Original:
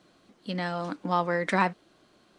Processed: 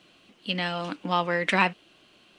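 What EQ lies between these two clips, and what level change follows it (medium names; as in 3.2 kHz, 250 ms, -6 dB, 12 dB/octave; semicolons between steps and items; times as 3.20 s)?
peaking EQ 2.8 kHz +15 dB 0.61 oct; treble shelf 8 kHz +4 dB; 0.0 dB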